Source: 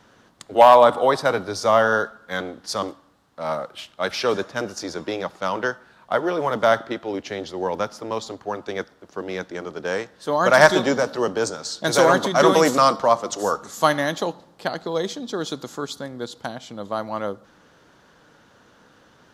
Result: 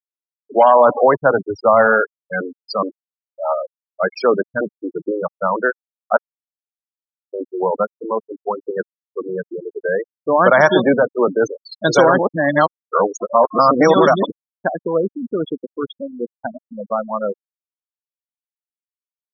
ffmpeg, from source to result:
ffmpeg -i in.wav -filter_complex "[0:a]asplit=5[link_01][link_02][link_03][link_04][link_05];[link_01]atrim=end=6.17,asetpts=PTS-STARTPTS,afade=type=out:start_time=6.166:duration=0.004:curve=hsin[link_06];[link_02]atrim=start=6.17:end=7.33,asetpts=PTS-STARTPTS,volume=0[link_07];[link_03]atrim=start=7.33:end=12.192,asetpts=PTS-STARTPTS,afade=type=in:duration=0.004:curve=hsin[link_08];[link_04]atrim=start=12.188:end=14.302,asetpts=PTS-STARTPTS,areverse[link_09];[link_05]atrim=start=14.298[link_10];[link_06][link_07][link_08]concat=n=3:v=0:a=1[link_11];[link_11][link_09]acrossfade=duration=0.004:curve1=hsin:curve2=hsin[link_12];[link_12][link_10]acrossfade=duration=0.004:curve1=hsin:curve2=hsin,highshelf=frequency=9400:gain=-4,afftfilt=real='re*gte(hypot(re,im),0.141)':imag='im*gte(hypot(re,im),0.141)':win_size=1024:overlap=0.75,alimiter=level_in=8dB:limit=-1dB:release=50:level=0:latency=1,volume=-1dB" out.wav

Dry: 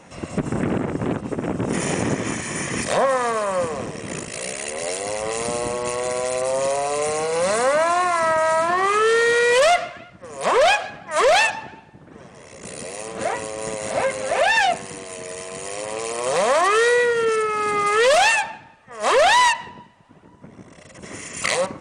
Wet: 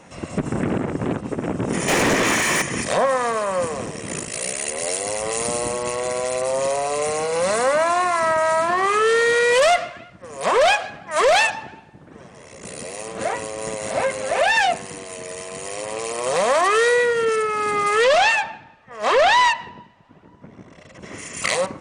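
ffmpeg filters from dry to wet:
ffmpeg -i in.wav -filter_complex "[0:a]asettb=1/sr,asplit=3[link_01][link_02][link_03];[link_01]atrim=end=1.884[link_04];[link_02]atrim=start=1.88:end=2.62,asetpts=PTS-STARTPTS,afade=type=in:duration=0.004:curve=qsin,afade=type=out:start_time=0.736:duration=0.004:curve=qsin,asplit=2[link_05][link_06];[link_06]highpass=frequency=720:poles=1,volume=25dB,asoftclip=type=tanh:threshold=-10.5dB[link_07];[link_05][link_07]amix=inputs=2:normalize=0,lowpass=frequency=4500:poles=1,volume=-6dB[link_08];[link_03]atrim=start=2.616[link_09];[link_04][link_08]acrossfade=duration=0.004:curve1=hsin:curve2=qsin[link_10];[link_10][link_09]acrossfade=duration=0.004:curve1=qsin:curve2=hsin,asettb=1/sr,asplit=3[link_11][link_12][link_13];[link_11]atrim=end=3.624[link_14];[link_12]atrim=start=3.62:end=5.84,asetpts=PTS-STARTPTS,afade=type=in:duration=0.004:curve=qsin,afade=type=out:start_time=2.216:duration=0.004:curve=qsin,highshelf=frequency=8900:gain=10.5[link_15];[link_13]atrim=start=5.836[link_16];[link_14][link_15]acrossfade=duration=0.004:curve1=hsin:curve2=qsin[link_17];[link_17][link_16]acrossfade=duration=0.004:curve1=qsin:curve2=hsin,asettb=1/sr,asplit=3[link_18][link_19][link_20];[link_18]atrim=end=18.044[link_21];[link_19]atrim=start=18.04:end=21.18,asetpts=PTS-STARTPTS,afade=type=in:duration=0.004:curve=qsin,afade=type=out:start_time=3.136:duration=0.004:curve=qsin,lowpass=5300[link_22];[link_20]atrim=start=21.176[link_23];[link_21][link_22]acrossfade=duration=0.004:curve1=hsin:curve2=qsin[link_24];[link_24][link_23]acrossfade=duration=0.004:curve1=qsin:curve2=hsin" out.wav

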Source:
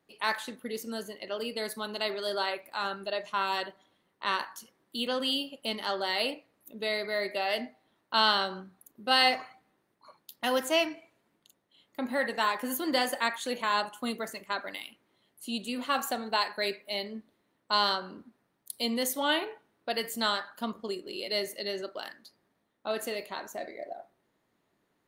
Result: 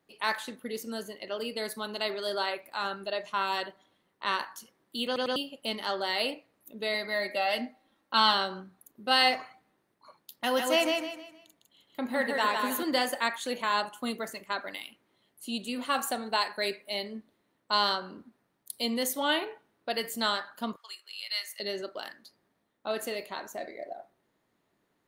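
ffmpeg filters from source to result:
ffmpeg -i in.wav -filter_complex "[0:a]asettb=1/sr,asplit=3[link_01][link_02][link_03];[link_01]atrim=end=6.944[link_04];[link_02]atrim=start=6.94:end=8.34,asetpts=PTS-STARTPTS,afade=type=in:duration=0.004:curve=qsin,afade=type=out:start_time=1.396:duration=0.004:curve=qsin,aecho=1:1:3.7:0.54,atrim=end_sample=61740[link_05];[link_03]atrim=start=8.336[link_06];[link_04][link_05]acrossfade=duration=0.004:curve1=hsin:curve2=qsin[link_07];[link_07][link_06]acrossfade=duration=0.004:curve1=qsin:curve2=hsin,asettb=1/sr,asplit=3[link_08][link_09][link_10];[link_08]atrim=end=10.314[link_11];[link_09]atrim=start=10.31:end=12.83,asetpts=PTS-STARTPTS,afade=type=in:duration=0.004:curve=qsin,afade=type=out:start_time=2.516:duration=0.004:curve=qsin,aecho=1:1:155|310|465|620:0.631|0.208|0.0687|0.0227,atrim=end_sample=111132[link_12];[link_10]atrim=start=12.826[link_13];[link_11][link_12]acrossfade=duration=0.004:curve1=hsin:curve2=qsin[link_14];[link_14][link_13]acrossfade=duration=0.004:curve1=qsin:curve2=hsin,asettb=1/sr,asplit=3[link_15][link_16][link_17];[link_15]atrim=end=15.854[link_18];[link_16]atrim=start=15.85:end=17.17,asetpts=PTS-STARTPTS,afade=type=in:duration=0.004:curve=qsin,afade=type=out:start_time=1.316:duration=0.004:curve=qsin,equalizer=frequency=9200:width=4.6:gain=10[link_19];[link_17]atrim=start=17.166[link_20];[link_18][link_19]acrossfade=duration=0.004:curve1=hsin:curve2=qsin[link_21];[link_21][link_20]acrossfade=duration=0.004:curve1=qsin:curve2=hsin,asettb=1/sr,asplit=3[link_22][link_23][link_24];[link_22]atrim=end=20.764[link_25];[link_23]atrim=start=20.76:end=21.6,asetpts=PTS-STARTPTS,afade=type=in:duration=0.004:curve=qsin,afade=type=out:start_time=0.836:duration=0.004:curve=qsin,highpass=frequency=1100:width=0.5412,highpass=frequency=1100:width=1.3066[link_26];[link_24]atrim=start=21.596[link_27];[link_25][link_26]acrossfade=duration=0.004:curve1=hsin:curve2=qsin[link_28];[link_28][link_27]acrossfade=duration=0.004:curve1=qsin:curve2=hsin,asplit=4[link_29][link_30][link_31][link_32];[link_29]atrim=end=5.162[link_33];[link_30]atrim=start=5.058:end=5.162[link_34];[link_31]atrim=start=5.058:end=5.162[link_35];[link_32]atrim=start=5.358[link_36];[link_33][link_34]acrossfade=duration=0.004:curve1=hsin:curve2=hsin[link_37];[link_37][link_35]acrossfade=duration=0.004:curve1=hsin:curve2=hsin[link_38];[link_38][link_36]acrossfade=duration=0.004:curve1=hsin:curve2=hsin" out.wav

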